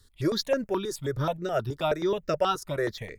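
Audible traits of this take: notches that jump at a steady rate 9.4 Hz 660–3300 Hz

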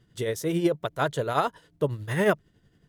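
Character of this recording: tremolo triangle 11 Hz, depth 60%

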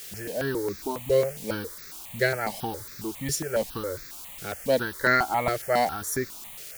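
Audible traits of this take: tremolo triangle 2.8 Hz, depth 60%; a quantiser's noise floor 8-bit, dither triangular; notches that jump at a steady rate 7.3 Hz 250–3000 Hz

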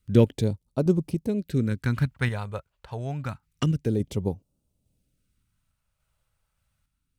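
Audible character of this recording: random-step tremolo; phasing stages 2, 0.28 Hz, lowest notch 260–1700 Hz

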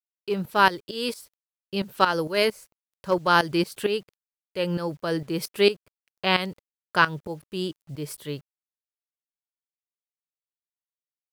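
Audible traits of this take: tremolo saw up 4.4 Hz, depth 80%; a quantiser's noise floor 10-bit, dither none

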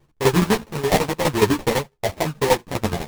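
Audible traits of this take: tremolo saw down 12 Hz, depth 85%; aliases and images of a low sample rate 1400 Hz, jitter 20%; a shimmering, thickened sound

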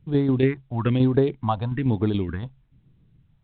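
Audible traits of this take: tremolo saw down 7 Hz, depth 50%; phasing stages 4, 1.1 Hz, lowest notch 330–2700 Hz; µ-law

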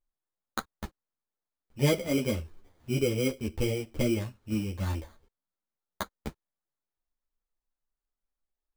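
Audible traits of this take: aliases and images of a low sample rate 2700 Hz, jitter 0%; a shimmering, thickened sound

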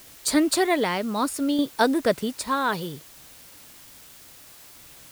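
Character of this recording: tremolo saw down 0.63 Hz, depth 50%; a quantiser's noise floor 8-bit, dither triangular

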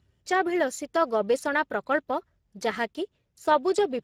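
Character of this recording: Speex

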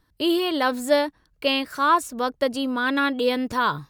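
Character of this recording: noise floor -66 dBFS; spectral tilt -1.5 dB/oct

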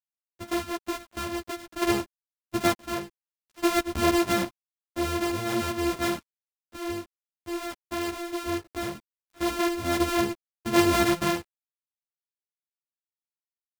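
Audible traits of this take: a buzz of ramps at a fixed pitch in blocks of 128 samples; random-step tremolo 1.1 Hz, depth 75%; a quantiser's noise floor 10-bit, dither none; a shimmering, thickened sound

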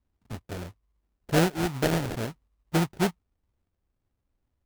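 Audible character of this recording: phasing stages 2, 2.3 Hz, lowest notch 530–1600 Hz; aliases and images of a low sample rate 1100 Hz, jitter 20%

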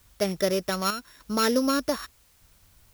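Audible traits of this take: a buzz of ramps at a fixed pitch in blocks of 8 samples; chopped level 0.83 Hz, depth 60%, duty 75%; a quantiser's noise floor 10-bit, dither triangular

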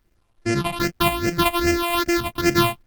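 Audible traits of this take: a buzz of ramps at a fixed pitch in blocks of 128 samples; phasing stages 6, 2.5 Hz, lowest notch 400–1000 Hz; a quantiser's noise floor 12-bit, dither none; Opus

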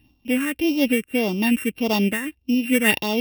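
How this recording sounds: a buzz of ramps at a fixed pitch in blocks of 16 samples; phasing stages 4, 1.7 Hz, lowest notch 790–1700 Hz; noise-modulated level

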